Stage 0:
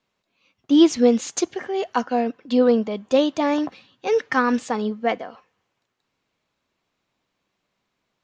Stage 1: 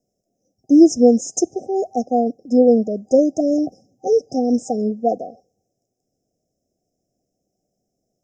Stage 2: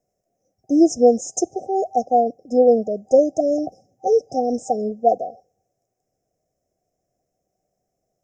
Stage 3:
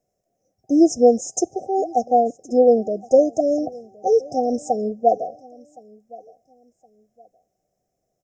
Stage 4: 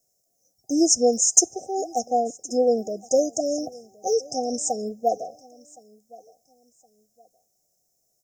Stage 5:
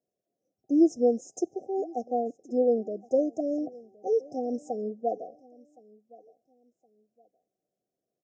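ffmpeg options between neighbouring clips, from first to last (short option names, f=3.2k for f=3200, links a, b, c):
-af "afftfilt=real='re*(1-between(b*sr/4096,780,5000))':imag='im*(1-between(b*sr/4096,780,5000))':win_size=4096:overlap=0.75,volume=4dB"
-af "equalizer=f=250:t=o:w=1:g=-8,equalizer=f=1k:t=o:w=1:g=8,equalizer=f=2k:t=o:w=1:g=9,equalizer=f=4k:t=o:w=1:g=-8"
-af "aecho=1:1:1067|2134:0.0708|0.0198"
-af "aexciter=amount=8.5:drive=4.1:freq=4.1k,volume=-6dB"
-af "bandpass=f=320:t=q:w=1.3:csg=0"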